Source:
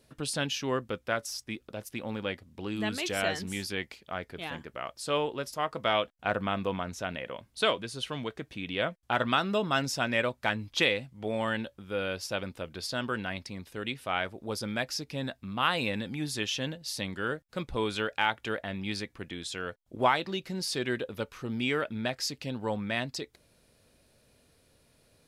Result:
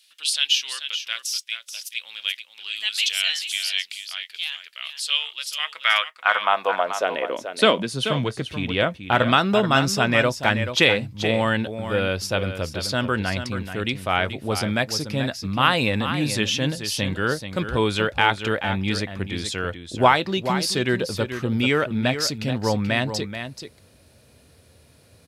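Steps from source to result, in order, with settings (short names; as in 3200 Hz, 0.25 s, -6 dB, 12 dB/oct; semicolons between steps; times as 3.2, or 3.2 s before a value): high-pass sweep 3100 Hz -> 79 Hz, 5.44–8.51; echo 0.432 s -9.5 dB; gain +8.5 dB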